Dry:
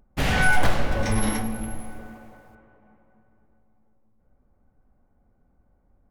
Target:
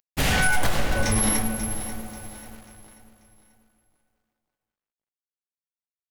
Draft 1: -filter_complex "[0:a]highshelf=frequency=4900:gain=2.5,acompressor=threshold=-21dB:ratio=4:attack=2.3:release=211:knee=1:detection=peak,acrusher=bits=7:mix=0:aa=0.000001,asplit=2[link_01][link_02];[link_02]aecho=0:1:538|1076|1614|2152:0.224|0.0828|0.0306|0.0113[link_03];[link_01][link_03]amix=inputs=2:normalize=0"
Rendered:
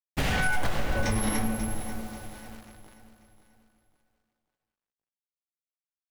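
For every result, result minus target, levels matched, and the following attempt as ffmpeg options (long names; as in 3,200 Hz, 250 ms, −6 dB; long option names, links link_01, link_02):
downward compressor: peak gain reduction +4.5 dB; 8,000 Hz band −4.5 dB
-filter_complex "[0:a]highshelf=frequency=4900:gain=2.5,acompressor=threshold=-14.5dB:ratio=4:attack=2.3:release=211:knee=1:detection=peak,acrusher=bits=7:mix=0:aa=0.000001,asplit=2[link_01][link_02];[link_02]aecho=0:1:538|1076|1614|2152:0.224|0.0828|0.0306|0.0113[link_03];[link_01][link_03]amix=inputs=2:normalize=0"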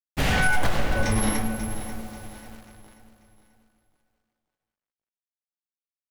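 8,000 Hz band −5.5 dB
-filter_complex "[0:a]highshelf=frequency=4900:gain=11.5,acompressor=threshold=-14.5dB:ratio=4:attack=2.3:release=211:knee=1:detection=peak,acrusher=bits=7:mix=0:aa=0.000001,asplit=2[link_01][link_02];[link_02]aecho=0:1:538|1076|1614|2152:0.224|0.0828|0.0306|0.0113[link_03];[link_01][link_03]amix=inputs=2:normalize=0"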